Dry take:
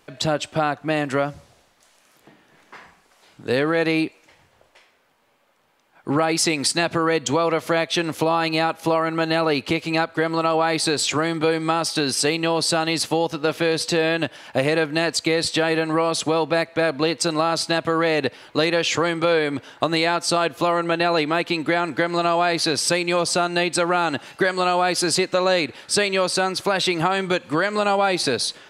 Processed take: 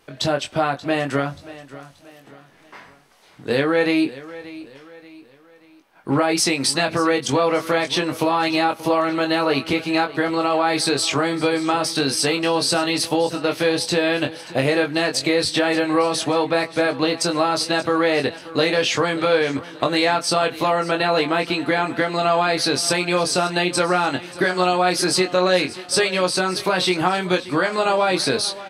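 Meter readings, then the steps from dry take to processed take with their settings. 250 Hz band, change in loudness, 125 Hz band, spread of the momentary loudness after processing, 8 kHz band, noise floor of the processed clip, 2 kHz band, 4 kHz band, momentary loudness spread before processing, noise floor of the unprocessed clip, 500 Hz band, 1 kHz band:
+1.5 dB, +1.0 dB, 0.0 dB, 4 LU, +0.5 dB, -50 dBFS, +1.0 dB, +1.5 dB, 4 LU, -59 dBFS, +1.0 dB, +1.0 dB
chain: notch 7200 Hz, Q 8; doubler 22 ms -5 dB; feedback echo 0.582 s, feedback 41%, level -17 dB; Vorbis 64 kbps 44100 Hz

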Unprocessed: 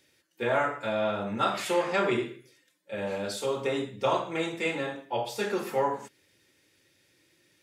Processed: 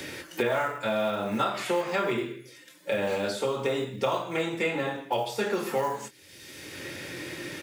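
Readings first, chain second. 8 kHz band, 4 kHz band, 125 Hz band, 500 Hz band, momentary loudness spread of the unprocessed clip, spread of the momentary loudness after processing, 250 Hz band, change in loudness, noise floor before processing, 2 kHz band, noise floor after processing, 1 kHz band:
+1.5 dB, +1.5 dB, +1.5 dB, +1.0 dB, 7 LU, 14 LU, +1.5 dB, 0.0 dB, -69 dBFS, +1.5 dB, -52 dBFS, 0.0 dB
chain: doubler 23 ms -9 dB; short-mantissa float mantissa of 4-bit; three-band squash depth 100%

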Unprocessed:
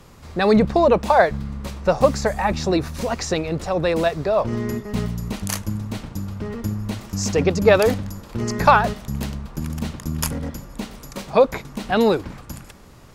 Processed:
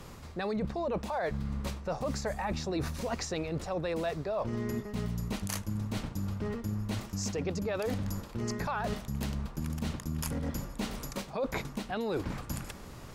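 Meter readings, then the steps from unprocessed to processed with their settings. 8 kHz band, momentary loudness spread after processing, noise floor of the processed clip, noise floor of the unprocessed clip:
-10.0 dB, 4 LU, -46 dBFS, -44 dBFS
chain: limiter -12 dBFS, peak gain reduction 10 dB; reverse; compressor 6:1, threshold -31 dBFS, peak gain reduction 14 dB; reverse

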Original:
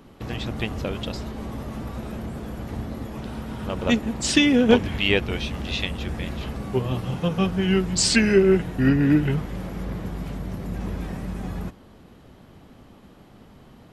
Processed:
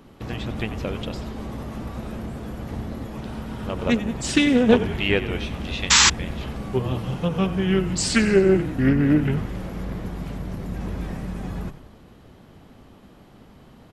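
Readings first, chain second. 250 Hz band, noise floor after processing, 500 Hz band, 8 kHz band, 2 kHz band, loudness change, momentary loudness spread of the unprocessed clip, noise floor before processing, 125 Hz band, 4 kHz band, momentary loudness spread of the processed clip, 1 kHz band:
0.0 dB, -49 dBFS, +0.5 dB, +5.5 dB, +1.5 dB, +1.0 dB, 16 LU, -50 dBFS, +0.5 dB, +2.5 dB, 16 LU, +3.0 dB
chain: dynamic EQ 4700 Hz, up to -5 dB, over -41 dBFS, Q 0.92; on a send: frequency-shifting echo 92 ms, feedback 55%, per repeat -34 Hz, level -13 dB; on the sum: painted sound noise, 5.9–6.1, 800–7800 Hz -14 dBFS; Doppler distortion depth 0.16 ms

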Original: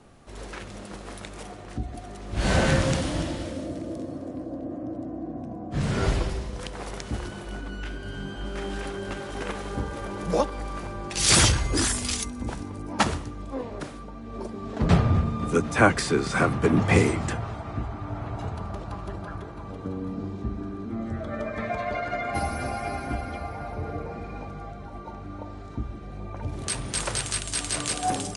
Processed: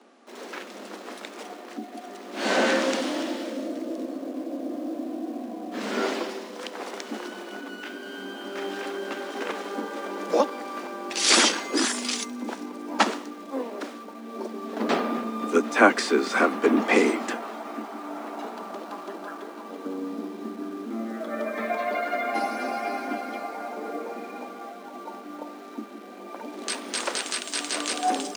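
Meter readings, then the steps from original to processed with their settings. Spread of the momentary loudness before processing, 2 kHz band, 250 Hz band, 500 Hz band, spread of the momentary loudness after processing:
17 LU, +2.5 dB, +0.5 dB, +2.5 dB, 17 LU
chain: LPF 6700 Hz 12 dB/oct; in parallel at -10.5 dB: bit-crush 7-bit; on the sum: steep high-pass 220 Hz 72 dB/oct

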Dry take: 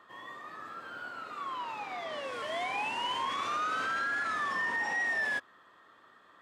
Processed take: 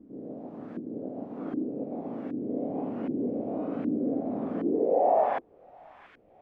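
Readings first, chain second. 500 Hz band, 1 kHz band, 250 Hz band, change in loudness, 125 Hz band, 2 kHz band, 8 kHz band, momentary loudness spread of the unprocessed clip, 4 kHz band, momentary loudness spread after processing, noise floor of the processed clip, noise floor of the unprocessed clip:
+14.0 dB, +0.5 dB, +20.5 dB, +2.5 dB, +14.0 dB, under -20 dB, under -30 dB, 14 LU, under -25 dB, 15 LU, -57 dBFS, -61 dBFS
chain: spectral limiter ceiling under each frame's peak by 22 dB; band shelf 1300 Hz -13 dB 1.3 oct; in parallel at 0 dB: limiter -31.5 dBFS, peak gain reduction 8 dB; on the sum: band-pass sweep 250 Hz -> 2200 Hz, 4.5–6; notch 360 Hz, Q 12; added noise white -62 dBFS; LFO low-pass saw up 1.3 Hz 290–1600 Hz; on a send: thin delay 0.68 s, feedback 61%, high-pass 1600 Hz, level -14 dB; on the sum: gain +9 dB

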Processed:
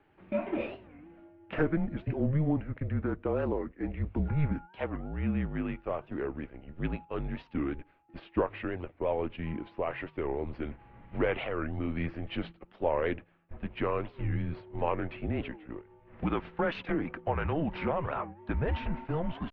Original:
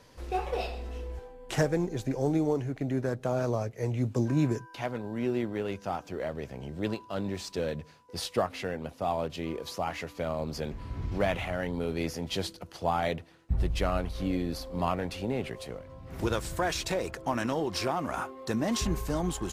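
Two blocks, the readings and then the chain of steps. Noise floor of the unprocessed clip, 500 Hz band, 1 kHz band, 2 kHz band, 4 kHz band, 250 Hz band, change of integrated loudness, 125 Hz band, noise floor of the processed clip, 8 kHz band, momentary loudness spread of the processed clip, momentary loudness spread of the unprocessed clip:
-53 dBFS, -2.0 dB, -3.5 dB, -1.5 dB, -10.5 dB, -1.5 dB, -1.5 dB, -0.5 dB, -62 dBFS, under -35 dB, 10 LU, 9 LU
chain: mistuned SSB -160 Hz 170–2900 Hz; gate -41 dBFS, range -7 dB; record warp 45 rpm, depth 250 cents

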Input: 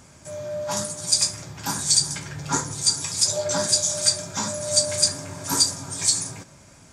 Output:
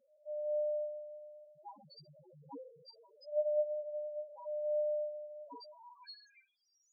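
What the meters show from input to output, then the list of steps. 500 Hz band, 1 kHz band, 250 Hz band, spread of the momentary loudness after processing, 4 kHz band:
-4.5 dB, -21.5 dB, -27.0 dB, 20 LU, under -35 dB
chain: Schroeder reverb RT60 0.4 s, combs from 30 ms, DRR 6.5 dB; band-pass sweep 550 Hz -> 6400 Hz, 5.58–6.88; loudest bins only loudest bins 1

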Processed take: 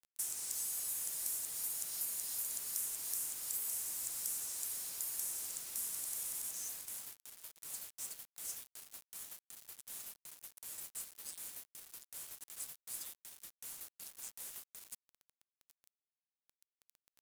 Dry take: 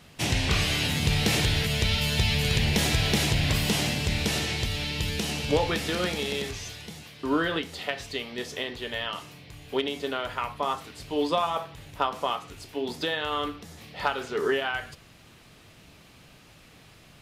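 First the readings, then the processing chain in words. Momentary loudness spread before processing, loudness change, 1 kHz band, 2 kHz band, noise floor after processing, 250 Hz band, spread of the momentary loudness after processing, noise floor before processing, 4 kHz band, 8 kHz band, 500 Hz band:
11 LU, -12.5 dB, -31.0 dB, -28.5 dB, under -85 dBFS, -38.0 dB, 14 LU, -53 dBFS, -23.0 dB, -1.5 dB, -36.5 dB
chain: inverse Chebyshev high-pass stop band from 1400 Hz, stop band 80 dB; differentiator; compressor 10:1, threshold -43 dBFS, peak gain reduction 12.5 dB; bit-crush 9-bit; gain +7 dB

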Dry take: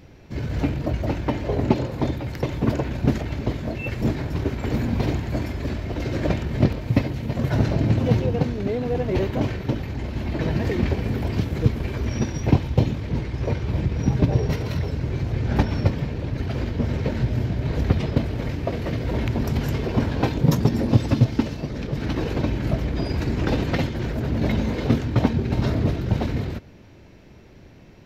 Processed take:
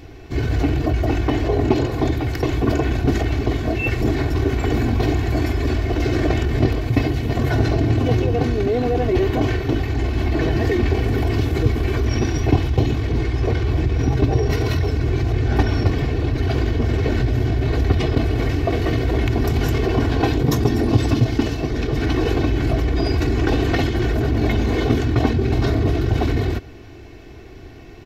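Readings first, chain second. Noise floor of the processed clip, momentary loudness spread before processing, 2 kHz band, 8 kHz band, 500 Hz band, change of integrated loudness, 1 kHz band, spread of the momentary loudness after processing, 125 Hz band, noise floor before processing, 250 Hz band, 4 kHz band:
-38 dBFS, 7 LU, +6.5 dB, n/a, +5.5 dB, +4.0 dB, +5.5 dB, 3 LU, +3.5 dB, -46 dBFS, +3.0 dB, +6.0 dB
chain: comb 2.7 ms, depth 68%; in parallel at -2 dB: negative-ratio compressor -25 dBFS

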